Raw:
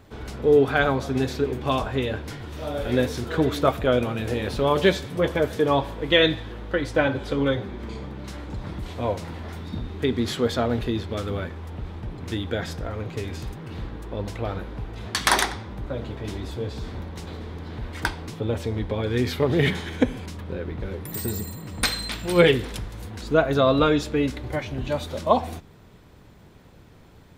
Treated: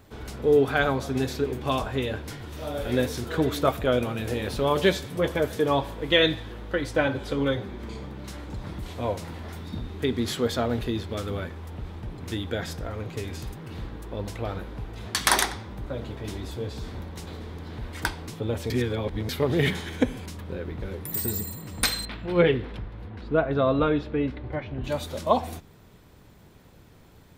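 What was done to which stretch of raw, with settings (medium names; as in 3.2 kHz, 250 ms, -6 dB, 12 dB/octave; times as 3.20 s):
18.70–19.29 s: reverse
22.05–24.84 s: distance through air 380 m
whole clip: treble shelf 7.8 kHz +8 dB; trim -2.5 dB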